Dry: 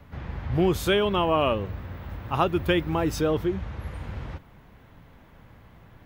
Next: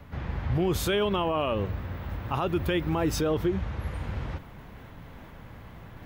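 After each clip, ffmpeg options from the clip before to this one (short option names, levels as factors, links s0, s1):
-af "alimiter=limit=0.1:level=0:latency=1:release=54,areverse,acompressor=mode=upward:threshold=0.01:ratio=2.5,areverse,volume=1.26"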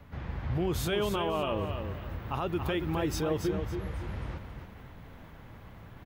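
-af "aecho=1:1:278|556|834|1112:0.447|0.134|0.0402|0.0121,volume=0.596"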